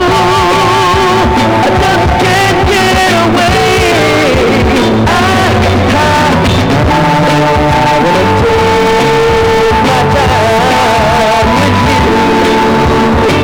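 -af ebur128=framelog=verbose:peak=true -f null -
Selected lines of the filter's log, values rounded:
Integrated loudness:
  I:          -7.8 LUFS
  Threshold: -17.8 LUFS
Loudness range:
  LRA:         0.4 LU
  Threshold: -27.8 LUFS
  LRA low:    -8.0 LUFS
  LRA high:   -7.6 LUFS
True peak:
  Peak:       -5.7 dBFS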